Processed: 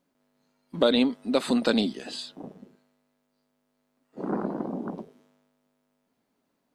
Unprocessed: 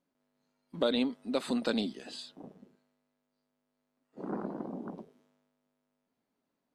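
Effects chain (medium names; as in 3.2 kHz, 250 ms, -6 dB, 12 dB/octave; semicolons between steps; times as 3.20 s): trim +7.5 dB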